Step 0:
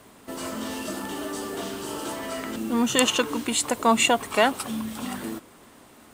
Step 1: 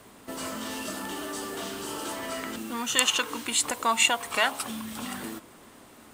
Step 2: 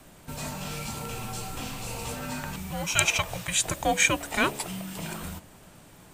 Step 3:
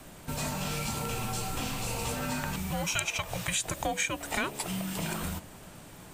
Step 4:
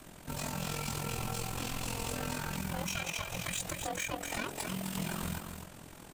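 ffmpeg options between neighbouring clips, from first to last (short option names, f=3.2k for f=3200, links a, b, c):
-filter_complex "[0:a]bandreject=f=69.55:t=h:w=4,bandreject=f=139.1:t=h:w=4,bandreject=f=208.65:t=h:w=4,bandreject=f=278.2:t=h:w=4,bandreject=f=347.75:t=h:w=4,bandreject=f=417.3:t=h:w=4,bandreject=f=486.85:t=h:w=4,bandreject=f=556.4:t=h:w=4,bandreject=f=625.95:t=h:w=4,bandreject=f=695.5:t=h:w=4,bandreject=f=765.05:t=h:w=4,bandreject=f=834.6:t=h:w=4,bandreject=f=904.15:t=h:w=4,bandreject=f=973.7:t=h:w=4,bandreject=f=1.04325k:t=h:w=4,acrossover=split=890[a][b];[a]acompressor=threshold=-35dB:ratio=6[c];[c][b]amix=inputs=2:normalize=0"
-af "afreqshift=-410"
-af "acompressor=threshold=-31dB:ratio=6,volume=3dB"
-filter_complex "[0:a]volume=30.5dB,asoftclip=hard,volume=-30.5dB,asplit=2[a][b];[b]aecho=0:1:258:0.473[c];[a][c]amix=inputs=2:normalize=0,tremolo=f=43:d=0.71"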